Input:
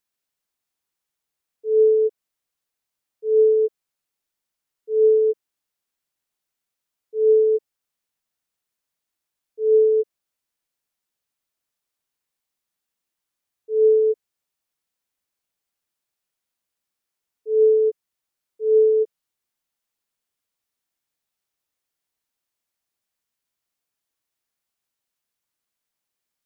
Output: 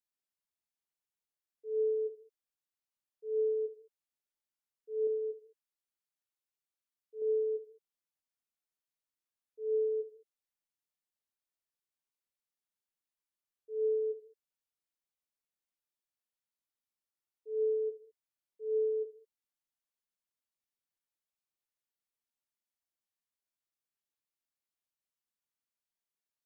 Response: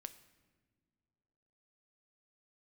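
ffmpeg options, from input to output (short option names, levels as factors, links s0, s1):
-filter_complex "[0:a]asettb=1/sr,asplit=3[s0][s1][s2];[s0]atrim=end=5.074[s3];[s1]atrim=start=5.07:end=7.22,asetpts=PTS-STARTPTS,afade=t=in:d=0.004:c=qsin,afade=t=out:st=2.146:d=0.004:c=qsin,lowshelf=f=430:g=-5[s4];[s2]atrim=start=7.216[s5];[s3][s4]acrossfade=d=0.004:c1=hsin:c2=qsin[s6];[s6][s5]acrossfade=d=0.004:c1=qsin:c2=hsin[s7];[1:a]atrim=start_sample=2205,afade=t=out:st=0.41:d=0.01,atrim=end_sample=18522,asetrate=79380,aresample=44100[s8];[s7][s8]afir=irnorm=-1:irlink=0,volume=0.75"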